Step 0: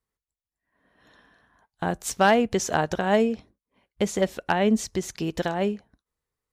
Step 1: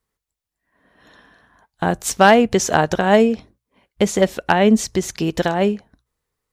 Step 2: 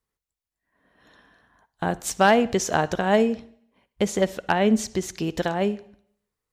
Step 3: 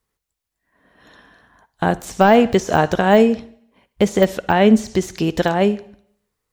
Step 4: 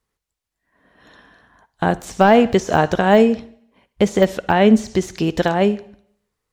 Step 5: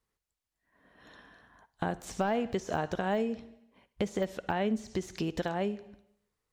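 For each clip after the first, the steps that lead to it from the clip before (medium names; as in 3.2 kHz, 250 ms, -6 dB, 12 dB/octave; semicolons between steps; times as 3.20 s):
hum notches 60/120 Hz; trim +7.5 dB
reverberation RT60 0.65 s, pre-delay 47 ms, DRR 18.5 dB; trim -6 dB
de-esser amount 80%; trim +7.5 dB
treble shelf 12 kHz -8 dB
compression 2.5:1, threshold -26 dBFS, peak gain reduction 12.5 dB; trim -6.5 dB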